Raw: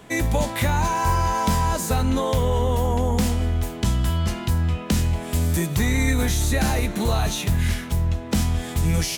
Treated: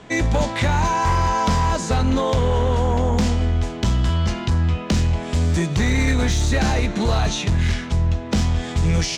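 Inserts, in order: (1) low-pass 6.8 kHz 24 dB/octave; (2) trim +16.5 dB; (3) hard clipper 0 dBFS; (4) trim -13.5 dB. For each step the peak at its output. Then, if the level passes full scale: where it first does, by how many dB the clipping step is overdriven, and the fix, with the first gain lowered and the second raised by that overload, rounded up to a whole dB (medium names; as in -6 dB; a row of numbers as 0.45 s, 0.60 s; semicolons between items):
-10.0 dBFS, +6.5 dBFS, 0.0 dBFS, -13.5 dBFS; step 2, 6.5 dB; step 2 +9.5 dB, step 4 -6.5 dB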